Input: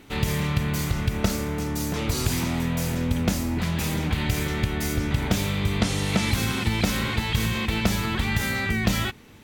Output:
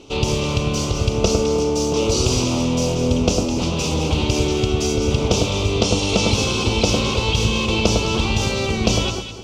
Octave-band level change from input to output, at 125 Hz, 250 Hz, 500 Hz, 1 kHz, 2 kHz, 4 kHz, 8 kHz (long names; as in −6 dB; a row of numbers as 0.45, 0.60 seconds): +4.0, +5.0, +12.5, +6.0, +1.5, +8.5, +8.5 decibels